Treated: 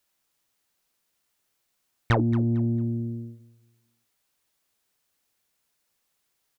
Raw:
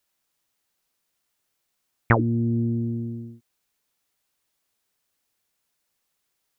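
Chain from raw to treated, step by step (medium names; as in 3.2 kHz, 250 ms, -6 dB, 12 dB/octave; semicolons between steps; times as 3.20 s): saturation -15.5 dBFS, distortion -13 dB; on a send: feedback delay 225 ms, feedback 28%, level -16.5 dB; on the sum: trim +1 dB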